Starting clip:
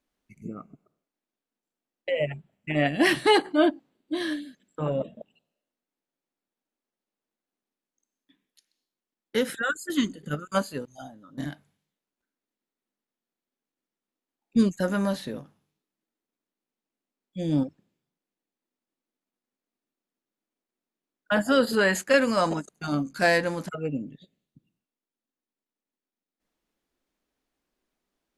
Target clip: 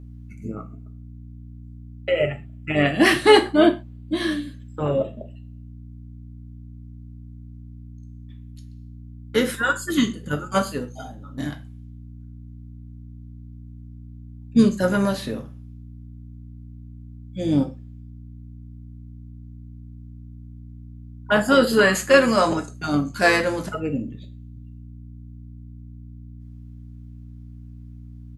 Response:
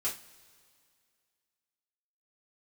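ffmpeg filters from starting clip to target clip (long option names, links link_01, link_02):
-filter_complex "[0:a]asplit=2[link_01][link_02];[link_02]asetrate=29433,aresample=44100,atempo=1.49831,volume=-15dB[link_03];[link_01][link_03]amix=inputs=2:normalize=0,aeval=exprs='val(0)+0.00631*(sin(2*PI*60*n/s)+sin(2*PI*2*60*n/s)/2+sin(2*PI*3*60*n/s)/3+sin(2*PI*4*60*n/s)/4+sin(2*PI*5*60*n/s)/5)':channel_layout=same,asplit=2[link_04][link_05];[1:a]atrim=start_sample=2205,atrim=end_sample=6174[link_06];[link_05][link_06]afir=irnorm=-1:irlink=0,volume=-4.5dB[link_07];[link_04][link_07]amix=inputs=2:normalize=0,volume=1.5dB"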